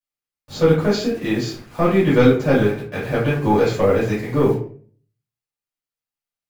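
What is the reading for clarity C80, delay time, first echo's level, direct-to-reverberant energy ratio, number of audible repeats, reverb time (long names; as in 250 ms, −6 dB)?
10.0 dB, no echo audible, no echo audible, −9.5 dB, no echo audible, 0.50 s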